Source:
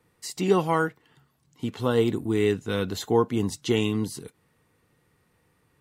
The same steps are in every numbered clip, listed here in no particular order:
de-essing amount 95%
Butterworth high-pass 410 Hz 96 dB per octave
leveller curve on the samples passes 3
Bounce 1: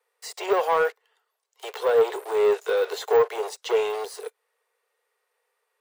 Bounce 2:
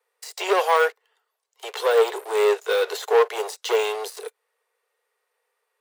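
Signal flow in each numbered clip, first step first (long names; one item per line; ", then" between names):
leveller curve on the samples, then Butterworth high-pass, then de-essing
de-essing, then leveller curve on the samples, then Butterworth high-pass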